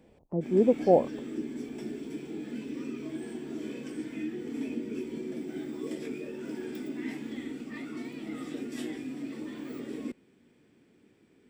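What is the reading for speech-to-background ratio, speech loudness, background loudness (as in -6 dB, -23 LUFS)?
12.5 dB, -25.5 LUFS, -38.0 LUFS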